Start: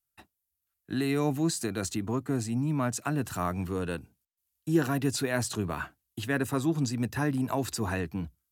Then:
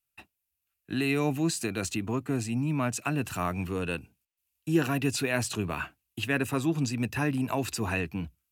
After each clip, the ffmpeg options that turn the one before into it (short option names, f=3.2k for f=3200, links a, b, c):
-af "equalizer=f=2.6k:w=3.5:g=11"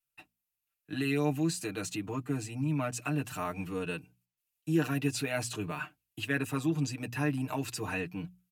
-af "bandreject=f=60:t=h:w=6,bandreject=f=120:t=h:w=6,bandreject=f=180:t=h:w=6,bandreject=f=240:t=h:w=6,aecho=1:1:6.6:0.83,volume=-6.5dB"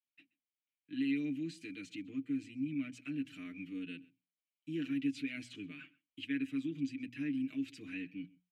-filter_complex "[0:a]asplit=3[a][b][c];[a]bandpass=f=270:t=q:w=8,volume=0dB[d];[b]bandpass=f=2.29k:t=q:w=8,volume=-6dB[e];[c]bandpass=f=3.01k:t=q:w=8,volume=-9dB[f];[d][e][f]amix=inputs=3:normalize=0,equalizer=f=440:t=o:w=2.7:g=-6,asplit=2[g][h];[h]adelay=128.3,volume=-23dB,highshelf=f=4k:g=-2.89[i];[g][i]amix=inputs=2:normalize=0,volume=6dB"